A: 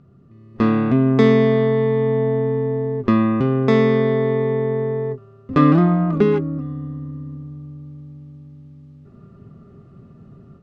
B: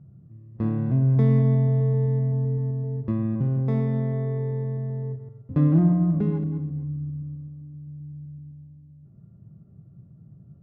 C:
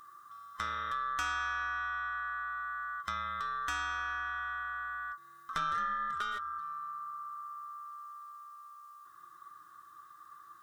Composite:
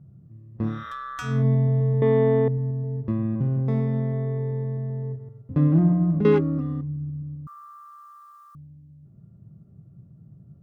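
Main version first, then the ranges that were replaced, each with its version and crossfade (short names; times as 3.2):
B
0.74–1.33 from C, crossfade 0.24 s
2.02–2.48 from A
6.25–6.81 from A
7.47–8.55 from C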